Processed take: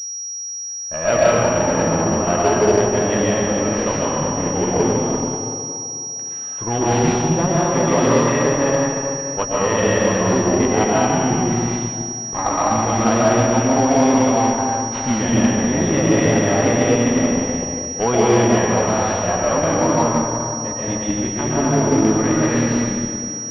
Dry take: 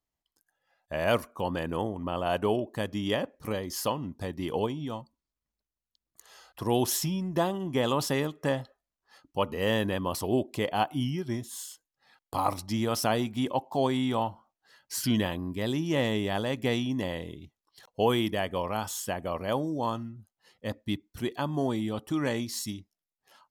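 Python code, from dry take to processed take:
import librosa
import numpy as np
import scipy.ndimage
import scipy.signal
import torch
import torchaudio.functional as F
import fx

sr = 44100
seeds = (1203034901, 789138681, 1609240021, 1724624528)

y = fx.chorus_voices(x, sr, voices=4, hz=0.19, base_ms=15, depth_ms=3.5, mix_pct=30)
y = fx.rev_freeverb(y, sr, rt60_s=2.8, hf_ratio=0.65, predelay_ms=90, drr_db=-7.0)
y = fx.cheby_harmonics(y, sr, harmonics=(8,), levels_db=(-22,), full_scale_db=-12.0)
y = fx.pwm(y, sr, carrier_hz=5700.0)
y = F.gain(torch.from_numpy(y), 7.0).numpy()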